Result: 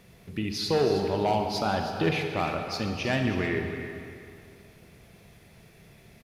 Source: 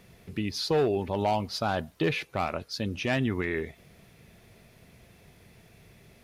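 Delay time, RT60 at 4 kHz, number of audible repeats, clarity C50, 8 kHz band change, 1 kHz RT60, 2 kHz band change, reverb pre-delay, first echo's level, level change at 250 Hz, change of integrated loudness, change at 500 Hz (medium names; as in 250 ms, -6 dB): 318 ms, 1.9 s, 1, 3.5 dB, +1.5 dB, 2.4 s, +1.5 dB, 31 ms, -11.0 dB, +1.5 dB, +1.5 dB, +1.5 dB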